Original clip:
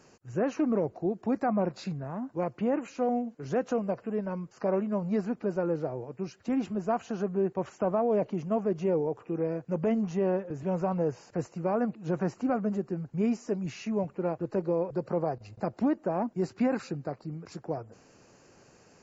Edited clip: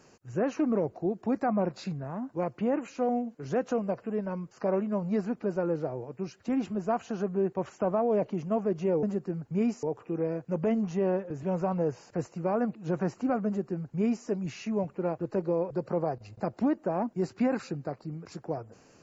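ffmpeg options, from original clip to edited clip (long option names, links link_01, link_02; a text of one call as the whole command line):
ffmpeg -i in.wav -filter_complex "[0:a]asplit=3[link_01][link_02][link_03];[link_01]atrim=end=9.032[link_04];[link_02]atrim=start=12.658:end=13.462[link_05];[link_03]atrim=start=9.028[link_06];[link_04][link_05]acrossfade=duration=0.004:curve1=hsin:curve2=hsin[link_07];[link_07][link_06]acrossfade=duration=0.004:curve1=hsin:curve2=hsin" out.wav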